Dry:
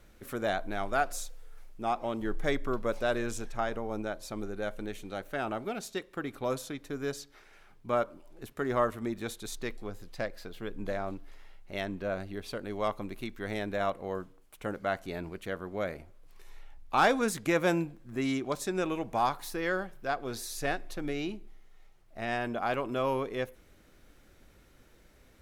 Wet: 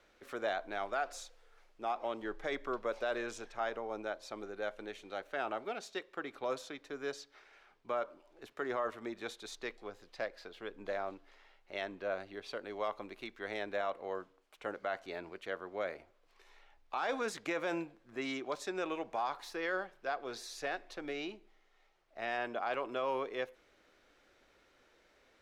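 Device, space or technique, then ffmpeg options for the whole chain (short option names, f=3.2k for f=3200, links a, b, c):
DJ mixer with the lows and highs turned down: -filter_complex "[0:a]acrossover=split=340 6300:gain=0.141 1 0.141[a][b][c];[a][b][c]amix=inputs=3:normalize=0,alimiter=limit=-23.5dB:level=0:latency=1:release=23,volume=-2dB"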